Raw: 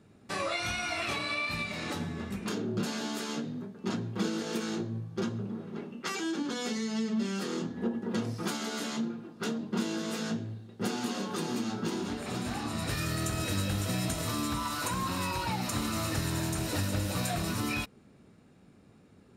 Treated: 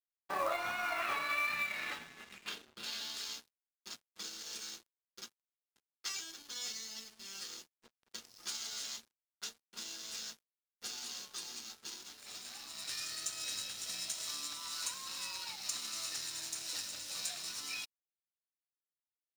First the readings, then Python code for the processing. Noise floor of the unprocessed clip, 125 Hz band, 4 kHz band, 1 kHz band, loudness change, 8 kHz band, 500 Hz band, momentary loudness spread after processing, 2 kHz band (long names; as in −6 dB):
−58 dBFS, −32.5 dB, −2.5 dB, −7.0 dB, −6.5 dB, −1.0 dB, −12.5 dB, 12 LU, −4.5 dB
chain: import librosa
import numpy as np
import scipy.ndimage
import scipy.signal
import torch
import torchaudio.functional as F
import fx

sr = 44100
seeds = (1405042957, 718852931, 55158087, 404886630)

y = fx.filter_sweep_bandpass(x, sr, from_hz=900.0, to_hz=5600.0, start_s=0.46, end_s=3.56, q=1.5)
y = np.sign(y) * np.maximum(np.abs(y) - 10.0 ** (-54.5 / 20.0), 0.0)
y = fx.quant_float(y, sr, bits=2)
y = y * 10.0 ** (4.0 / 20.0)